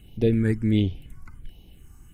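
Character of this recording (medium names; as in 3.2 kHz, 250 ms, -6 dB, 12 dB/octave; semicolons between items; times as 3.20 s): phasing stages 4, 1.4 Hz, lowest notch 560–1400 Hz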